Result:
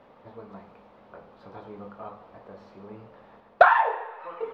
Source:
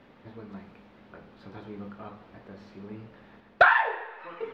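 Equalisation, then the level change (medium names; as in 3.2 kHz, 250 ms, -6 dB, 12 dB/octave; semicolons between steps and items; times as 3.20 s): high-order bell 750 Hz +9 dB; -4.0 dB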